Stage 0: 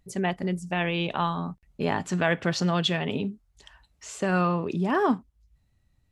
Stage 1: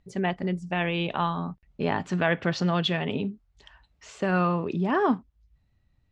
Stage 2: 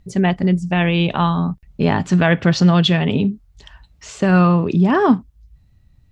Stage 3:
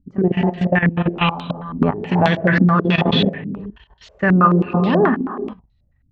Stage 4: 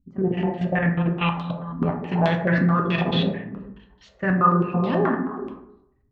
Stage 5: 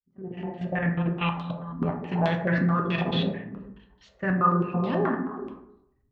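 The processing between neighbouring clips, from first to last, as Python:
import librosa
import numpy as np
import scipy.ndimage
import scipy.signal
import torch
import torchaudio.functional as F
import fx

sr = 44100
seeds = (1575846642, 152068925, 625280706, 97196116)

y1 = scipy.signal.sosfilt(scipy.signal.butter(2, 4300.0, 'lowpass', fs=sr, output='sos'), x)
y2 = fx.bass_treble(y1, sr, bass_db=8, treble_db=6)
y2 = y2 * 10.0 ** (7.0 / 20.0)
y3 = fx.rev_gated(y2, sr, seeds[0], gate_ms=440, shape='flat', drr_db=2.0)
y3 = fx.level_steps(y3, sr, step_db=15)
y3 = fx.filter_held_lowpass(y3, sr, hz=9.3, low_hz=270.0, high_hz=3900.0)
y3 = y3 * 10.0 ** (-1.0 / 20.0)
y4 = fx.rev_plate(y3, sr, seeds[1], rt60_s=0.77, hf_ratio=0.4, predelay_ms=0, drr_db=2.5)
y4 = y4 * 10.0 ** (-8.0 / 20.0)
y5 = fx.fade_in_head(y4, sr, length_s=0.91)
y5 = y5 * 10.0 ** (-4.0 / 20.0)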